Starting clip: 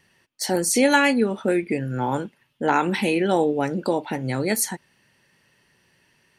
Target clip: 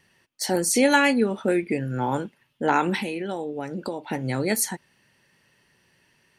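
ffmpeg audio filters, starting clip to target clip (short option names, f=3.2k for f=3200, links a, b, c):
-filter_complex "[0:a]asettb=1/sr,asplit=3[a][b][c];[a]atrim=end=2.964[d];[b]atrim=start=2.96:end=4.1,asetpts=PTS-STARTPTS,afade=t=in:d=0.004:c=qsin,afade=t=out:st=1.136:d=0.004:c=qsin,acompressor=threshold=-26dB:ratio=6[e];[c]atrim=start=4.096[f];[d][e]acrossfade=d=0.004:c1=hsin:c2=qsin[g];[g][f]acrossfade=d=0.004:c1=qsin:c2=hsin,volume=-1dB"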